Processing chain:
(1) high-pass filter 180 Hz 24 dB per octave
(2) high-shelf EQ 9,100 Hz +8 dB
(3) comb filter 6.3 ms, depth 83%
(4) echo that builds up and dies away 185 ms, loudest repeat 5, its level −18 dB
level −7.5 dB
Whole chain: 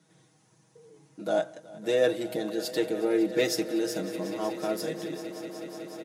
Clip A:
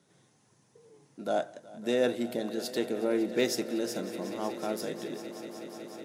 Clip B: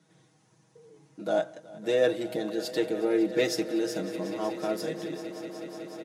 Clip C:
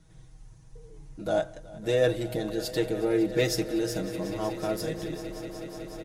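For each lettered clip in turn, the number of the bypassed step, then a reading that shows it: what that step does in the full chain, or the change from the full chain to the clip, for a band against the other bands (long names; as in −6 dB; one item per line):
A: 3, 1 kHz band +2.5 dB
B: 2, 8 kHz band −3.0 dB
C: 1, 125 Hz band +9.5 dB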